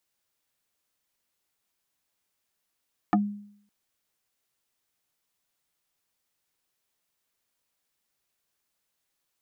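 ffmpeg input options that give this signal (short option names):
-f lavfi -i "aevalsrc='0.158*pow(10,-3*t/0.64)*sin(2*PI*205*t+2.7*pow(10,-3*t/0.1)*sin(2*PI*2.51*205*t))':d=0.56:s=44100"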